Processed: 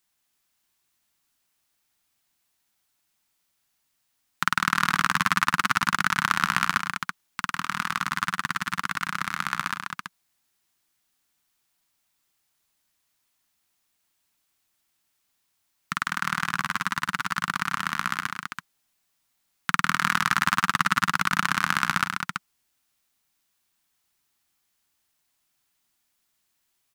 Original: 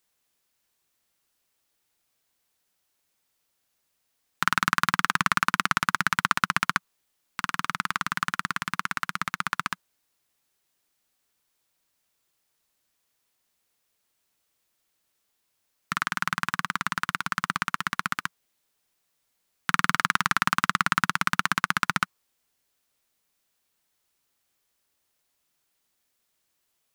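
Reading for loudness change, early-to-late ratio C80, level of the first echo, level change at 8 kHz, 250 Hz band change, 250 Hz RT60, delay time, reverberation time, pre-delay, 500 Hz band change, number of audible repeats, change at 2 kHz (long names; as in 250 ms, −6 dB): +1.0 dB, no reverb audible, −13.0 dB, +1.5 dB, +1.0 dB, no reverb audible, 99 ms, no reverb audible, no reverb audible, −2.0 dB, 3, +1.5 dB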